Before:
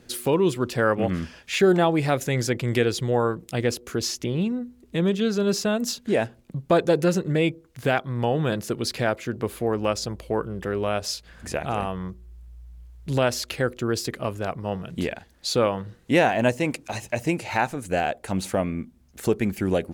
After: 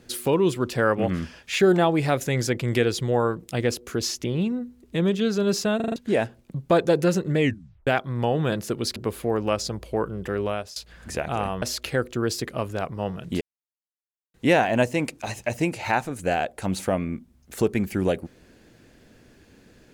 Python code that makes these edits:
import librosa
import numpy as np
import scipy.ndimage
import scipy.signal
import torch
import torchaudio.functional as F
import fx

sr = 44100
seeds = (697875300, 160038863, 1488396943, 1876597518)

y = fx.edit(x, sr, fx.stutter_over(start_s=5.76, slice_s=0.04, count=5),
    fx.tape_stop(start_s=7.39, length_s=0.48),
    fx.cut(start_s=8.96, length_s=0.37),
    fx.fade_out_to(start_s=10.81, length_s=0.32, floor_db=-20.0),
    fx.cut(start_s=11.99, length_s=1.29),
    fx.silence(start_s=15.07, length_s=0.93), tone=tone)